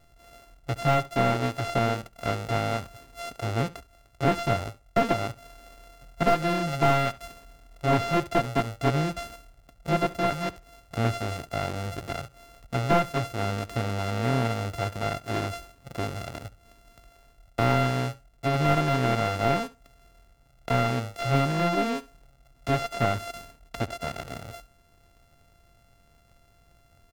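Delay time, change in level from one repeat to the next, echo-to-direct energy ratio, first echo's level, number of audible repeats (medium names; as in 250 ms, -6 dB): 69 ms, -16.0 dB, -19.0 dB, -19.0 dB, 2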